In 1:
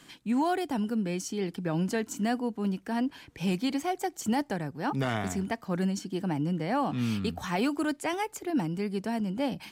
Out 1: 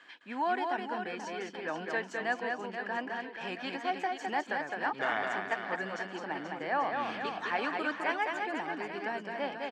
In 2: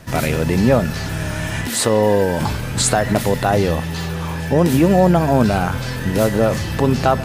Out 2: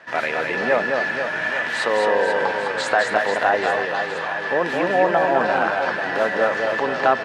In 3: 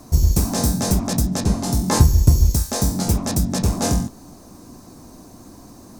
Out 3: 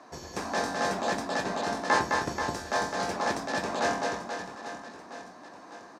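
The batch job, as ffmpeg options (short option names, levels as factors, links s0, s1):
-filter_complex "[0:a]highpass=590,lowpass=2800,equalizer=f=1700:w=6.2:g=8.5,asplit=2[s0][s1];[s1]aecho=0:1:210|483|837.9|1299|1899:0.631|0.398|0.251|0.158|0.1[s2];[s0][s2]amix=inputs=2:normalize=0"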